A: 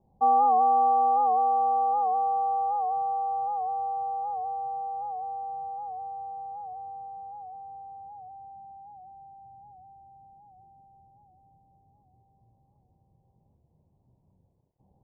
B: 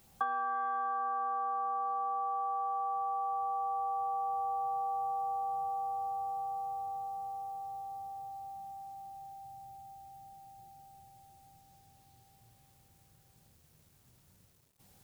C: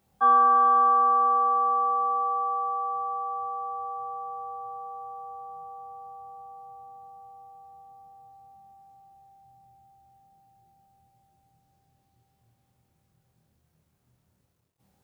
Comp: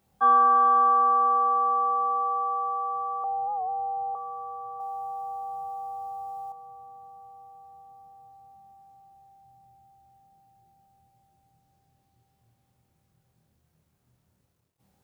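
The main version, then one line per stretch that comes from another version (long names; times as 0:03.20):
C
0:03.24–0:04.15: punch in from A
0:04.80–0:06.52: punch in from B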